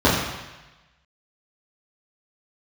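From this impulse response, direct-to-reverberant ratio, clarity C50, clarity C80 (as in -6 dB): -9.5 dB, 2.0 dB, 4.0 dB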